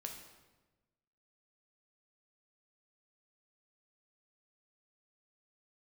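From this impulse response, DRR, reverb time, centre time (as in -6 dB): 2.0 dB, 1.2 s, 33 ms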